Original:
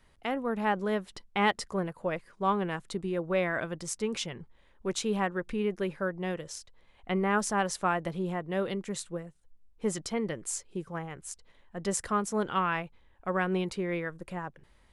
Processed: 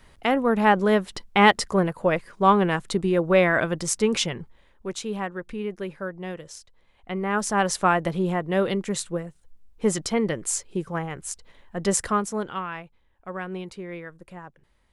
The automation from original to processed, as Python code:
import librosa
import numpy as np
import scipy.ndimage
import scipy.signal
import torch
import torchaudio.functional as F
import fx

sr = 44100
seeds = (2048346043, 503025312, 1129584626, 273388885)

y = fx.gain(x, sr, db=fx.line((4.27, 10.0), (4.94, -0.5), (7.16, -0.5), (7.71, 8.0), (12.01, 8.0), (12.67, -4.0)))